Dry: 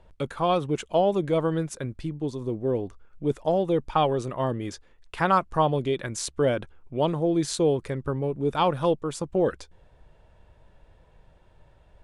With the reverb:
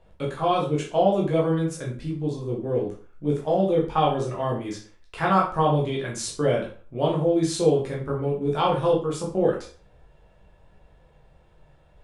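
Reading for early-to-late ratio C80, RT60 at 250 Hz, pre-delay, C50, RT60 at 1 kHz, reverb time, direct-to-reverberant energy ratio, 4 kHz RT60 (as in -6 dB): 11.5 dB, 0.40 s, 11 ms, 6.5 dB, 0.40 s, 0.40 s, -4.0 dB, 0.35 s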